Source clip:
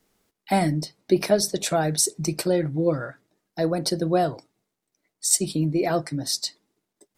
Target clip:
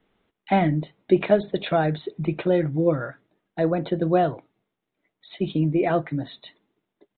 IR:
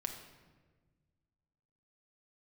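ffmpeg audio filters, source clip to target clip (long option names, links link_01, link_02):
-af "aresample=8000,aresample=44100,volume=1.5dB"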